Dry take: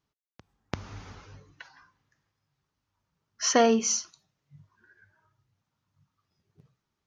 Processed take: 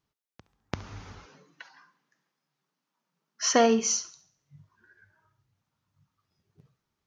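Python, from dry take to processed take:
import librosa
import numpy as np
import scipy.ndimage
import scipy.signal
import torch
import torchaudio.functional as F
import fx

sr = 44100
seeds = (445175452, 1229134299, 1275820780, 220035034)

y = fx.steep_highpass(x, sr, hz=160.0, slope=48, at=(1.26, 3.42))
y = fx.echo_thinned(y, sr, ms=69, feedback_pct=45, hz=420.0, wet_db=-17)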